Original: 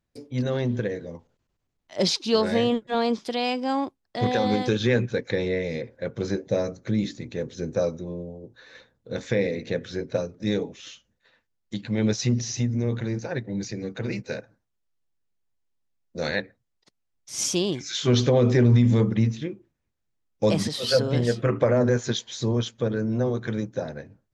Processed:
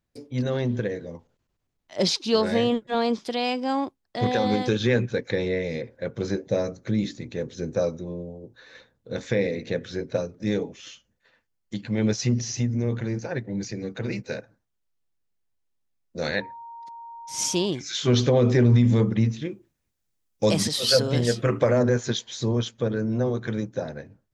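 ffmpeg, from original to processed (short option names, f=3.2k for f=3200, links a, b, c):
-filter_complex "[0:a]asettb=1/sr,asplit=3[a][b][c];[a]atrim=end=10.394[d];[b]atrim=start=10.39:end=13.75,asetpts=PTS-STARTPTS,afade=t=in:d=0.004:c=qsin,afade=t=out:st=3.356:d=0.004:c=qsin,bandreject=f=3.8k:w=12[e];[c]atrim=start=13.746[f];[d][e]acrossfade=d=0.004:c1=hsin:c2=qsin[g];[g][f]acrossfade=d=0.004:c1=qsin:c2=hsin,asettb=1/sr,asplit=3[h][i][j];[h]atrim=end=16.414[k];[i]atrim=start=16.41:end=17.66,asetpts=PTS-STARTPTS,afade=t=in:d=0.004:c=qsin,afade=t=out:st=1.246:d=0.004:c=qsin,aeval=exprs='val(0)+0.0126*sin(2*PI*930*n/s)':c=same[l];[j]atrim=start=17.656[m];[k][l]acrossfade=d=0.004:c1=hsin:c2=qsin[n];[n][m]acrossfade=d=0.004:c1=qsin:c2=hsin,asettb=1/sr,asplit=3[o][p][q];[o]atrim=end=19.454[r];[p]atrim=start=19.45:end=21.83,asetpts=PTS-STARTPTS,afade=t=in:d=0.004:c=qsin,afade=t=out:st=2.376:d=0.004:c=qsin,highshelf=f=4.2k:g=10[s];[q]atrim=start=21.826[t];[r][s]acrossfade=d=0.004:c1=hsin:c2=qsin[u];[u][t]acrossfade=d=0.004:c1=qsin:c2=hsin"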